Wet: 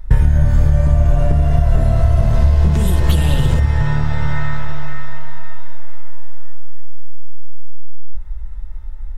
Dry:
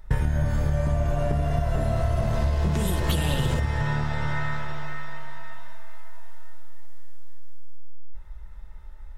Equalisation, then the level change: low shelf 120 Hz +11.5 dB; +3.5 dB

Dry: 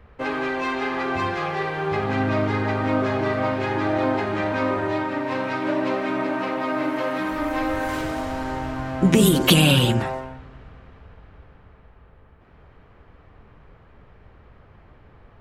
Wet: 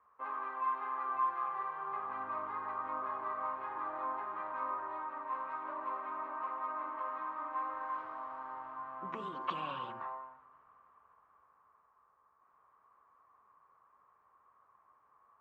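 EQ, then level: band-pass 1100 Hz, Q 11; air absorption 140 m; +1.0 dB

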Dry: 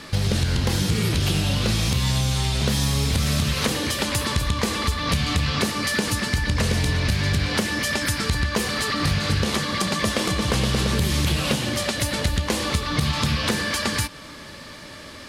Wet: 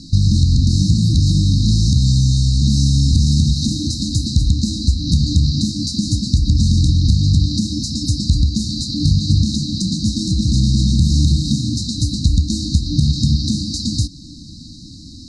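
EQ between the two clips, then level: brick-wall FIR band-stop 330–3700 Hz; LPF 7200 Hz 24 dB/oct; low shelf 190 Hz +5.5 dB; +5.0 dB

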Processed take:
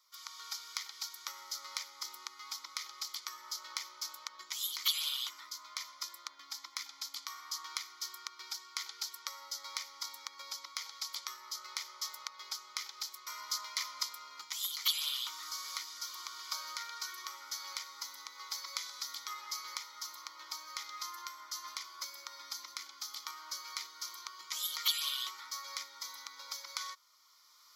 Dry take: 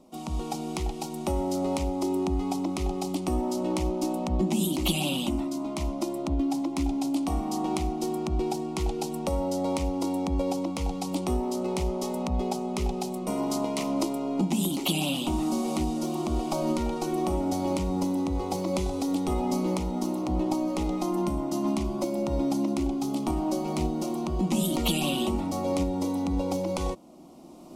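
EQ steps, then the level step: HPF 1300 Hz 24 dB/oct; fixed phaser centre 2700 Hz, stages 6; notch 3800 Hz, Q 23; +4.5 dB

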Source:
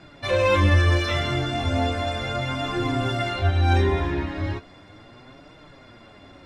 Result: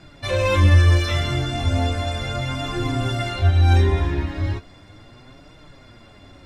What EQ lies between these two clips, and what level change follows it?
low shelf 120 Hz +11 dB; high shelf 5000 Hz +10 dB; -2.0 dB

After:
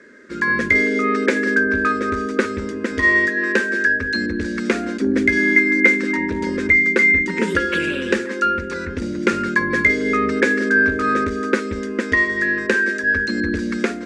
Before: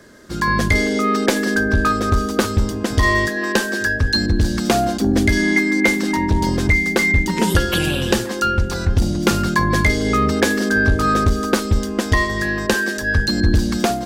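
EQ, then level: speaker cabinet 170–8000 Hz, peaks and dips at 200 Hz -5 dB, 320 Hz -7 dB, 1100 Hz -6 dB, 3000 Hz -7 dB; resonant high shelf 3100 Hz -11.5 dB, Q 1.5; fixed phaser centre 310 Hz, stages 4; +4.5 dB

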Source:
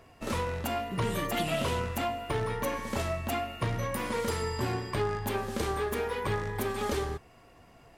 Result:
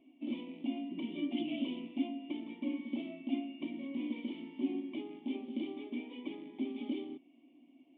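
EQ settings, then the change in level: vocal tract filter i; brick-wall FIR high-pass 180 Hz; fixed phaser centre 300 Hz, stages 8; +8.5 dB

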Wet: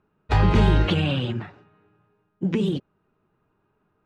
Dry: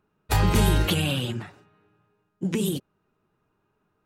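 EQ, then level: air absorption 130 m; high shelf 5800 Hz -6 dB; bell 8300 Hz -3.5 dB 1.3 oct; +3.0 dB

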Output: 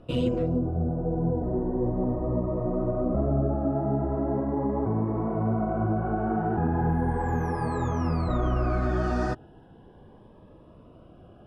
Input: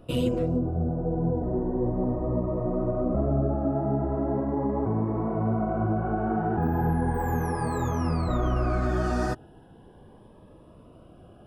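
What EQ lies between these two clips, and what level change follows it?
air absorption 80 m; 0.0 dB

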